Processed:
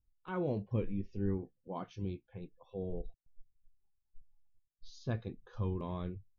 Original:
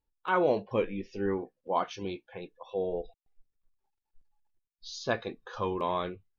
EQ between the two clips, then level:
drawn EQ curve 110 Hz 0 dB, 590 Hz −21 dB, 950 Hz −23 dB
+7.5 dB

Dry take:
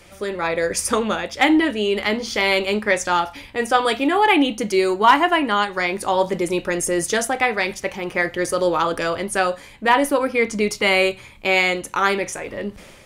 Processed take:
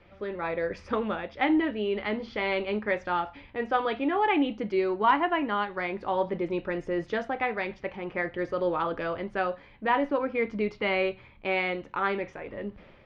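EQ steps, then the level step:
low-pass filter 6,300 Hz 24 dB per octave
high-frequency loss of the air 380 metres
−7.0 dB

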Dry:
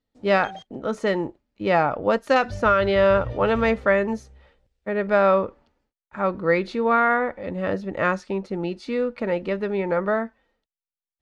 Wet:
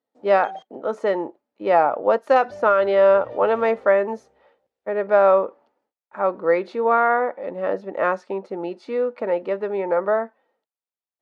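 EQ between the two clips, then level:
high-pass filter 540 Hz 12 dB per octave
tilt shelving filter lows +9 dB, about 1,200 Hz
parametric band 830 Hz +2 dB
0.0 dB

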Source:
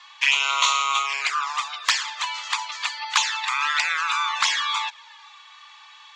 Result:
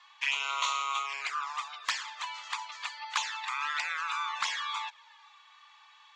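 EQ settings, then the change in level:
parametric band 4,800 Hz −4 dB 2.4 octaves
high-shelf EQ 9,700 Hz −4 dB
−8.0 dB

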